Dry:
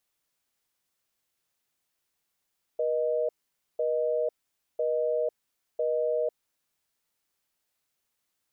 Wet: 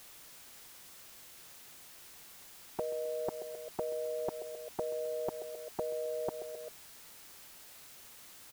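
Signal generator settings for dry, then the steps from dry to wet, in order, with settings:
call progress tone busy tone, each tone −27 dBFS 3.62 s
repeating echo 132 ms, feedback 47%, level −22 dB
every bin compressed towards the loudest bin 4 to 1

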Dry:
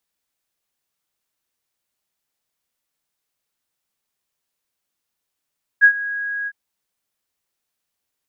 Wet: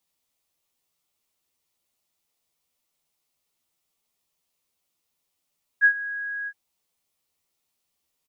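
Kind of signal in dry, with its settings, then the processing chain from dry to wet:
note with an ADSR envelope sine 1,650 Hz, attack 33 ms, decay 79 ms, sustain −17.5 dB, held 0.66 s, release 49 ms −5 dBFS
parametric band 1,600 Hz −9 dB 0.36 octaves
double-tracking delay 12 ms −3 dB

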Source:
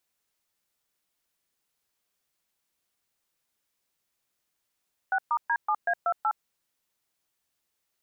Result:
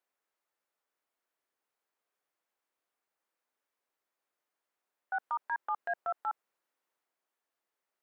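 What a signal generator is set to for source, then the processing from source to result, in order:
touch tones "6*D7A28", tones 64 ms, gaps 124 ms, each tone −25 dBFS
three-way crossover with the lows and the highs turned down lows −22 dB, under 290 Hz, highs −13 dB, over 2,000 Hz
transient designer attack −7 dB, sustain +2 dB
brickwall limiter −25 dBFS

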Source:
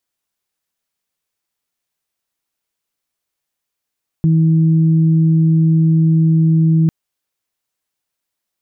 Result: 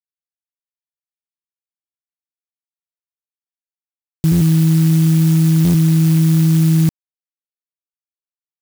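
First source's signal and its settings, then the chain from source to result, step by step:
steady harmonic partials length 2.65 s, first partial 161 Hz, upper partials −13.5 dB, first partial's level −9 dB
bit reduction 10 bits
buffer that repeats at 0:04.31/0:05.64, samples 512, times 8
converter with an unsteady clock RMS 0.11 ms

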